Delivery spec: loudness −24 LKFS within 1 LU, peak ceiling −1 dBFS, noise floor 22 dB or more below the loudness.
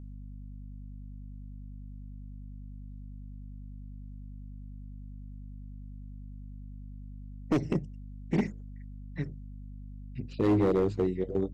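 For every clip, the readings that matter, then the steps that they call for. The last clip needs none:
share of clipped samples 0.8%; peaks flattened at −20.0 dBFS; mains hum 50 Hz; hum harmonics up to 250 Hz; level of the hum −41 dBFS; integrated loudness −30.5 LKFS; sample peak −20.0 dBFS; target loudness −24.0 LKFS
→ clipped peaks rebuilt −20 dBFS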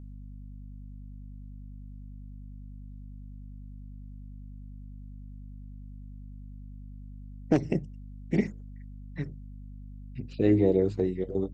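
share of clipped samples 0.0%; mains hum 50 Hz; hum harmonics up to 250 Hz; level of the hum −41 dBFS
→ mains-hum notches 50/100/150/200/250 Hz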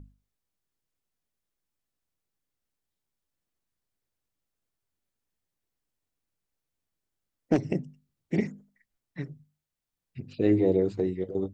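mains hum none found; integrated loudness −27.5 LKFS; sample peak −11.0 dBFS; target loudness −24.0 LKFS
→ level +3.5 dB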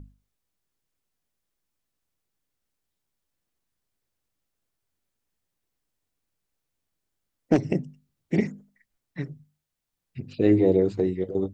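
integrated loudness −24.0 LKFS; sample peak −7.5 dBFS; background noise floor −82 dBFS

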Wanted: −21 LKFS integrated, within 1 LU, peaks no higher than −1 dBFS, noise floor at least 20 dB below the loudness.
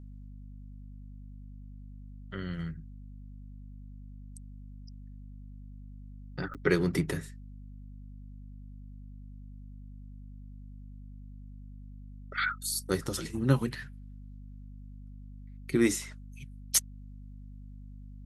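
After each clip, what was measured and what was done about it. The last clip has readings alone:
number of dropouts 1; longest dropout 7.8 ms; mains hum 50 Hz; hum harmonics up to 250 Hz; level of the hum −43 dBFS; integrated loudness −31.0 LKFS; sample peak −10.0 dBFS; target loudness −21.0 LKFS
→ repair the gap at 0:06.54, 7.8 ms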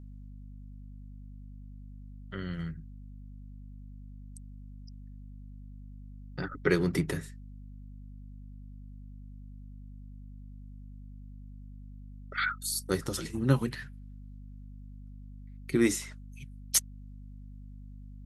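number of dropouts 0; mains hum 50 Hz; hum harmonics up to 250 Hz; level of the hum −43 dBFS
→ hum removal 50 Hz, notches 5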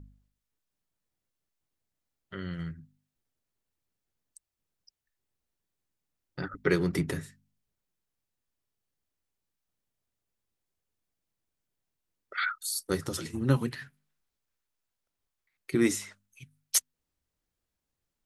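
mains hum none found; integrated loudness −31.0 LKFS; sample peak −10.0 dBFS; target loudness −21.0 LKFS
→ level +10 dB
brickwall limiter −1 dBFS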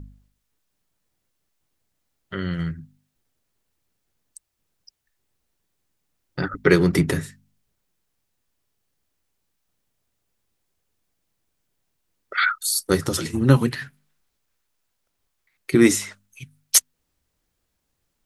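integrated loudness −21.0 LKFS; sample peak −1.0 dBFS; background noise floor −76 dBFS

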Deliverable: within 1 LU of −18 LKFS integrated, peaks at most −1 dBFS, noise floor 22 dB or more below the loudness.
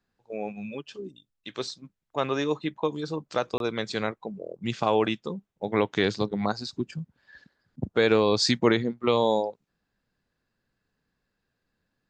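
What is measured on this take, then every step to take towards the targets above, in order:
number of dropouts 1; longest dropout 22 ms; integrated loudness −27.5 LKFS; sample peak −7.5 dBFS; target loudness −18.0 LKFS
→ repair the gap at 0:03.58, 22 ms
level +9.5 dB
brickwall limiter −1 dBFS

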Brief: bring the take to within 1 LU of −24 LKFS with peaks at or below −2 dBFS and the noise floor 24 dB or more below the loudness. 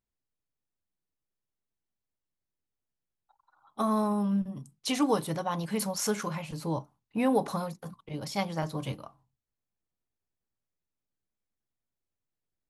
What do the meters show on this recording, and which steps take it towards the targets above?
integrated loudness −31.0 LKFS; sample peak −14.5 dBFS; target loudness −24.0 LKFS
→ level +7 dB

